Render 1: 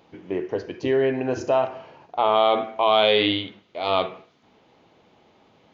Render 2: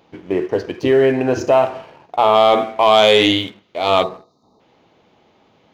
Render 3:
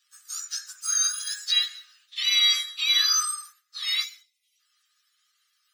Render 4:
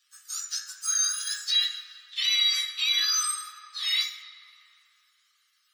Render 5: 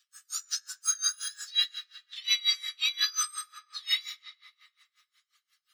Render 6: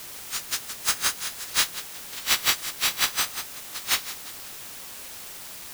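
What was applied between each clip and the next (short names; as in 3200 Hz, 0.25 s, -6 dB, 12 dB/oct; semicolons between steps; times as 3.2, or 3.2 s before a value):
spectral gain 4.03–4.6, 1300–3600 Hz -29 dB; sample leveller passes 1; gain +4 dB
spectrum mirrored in octaves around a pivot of 1600 Hz; rippled Chebyshev high-pass 1200 Hz, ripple 6 dB; gain -5 dB
limiter -18 dBFS, peak gain reduction 8 dB; on a send at -4 dB: reverb RT60 3.5 s, pre-delay 3 ms
dB-linear tremolo 5.6 Hz, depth 25 dB; gain +2 dB
spectral contrast lowered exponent 0.19; in parallel at -4 dB: requantised 6-bit, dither triangular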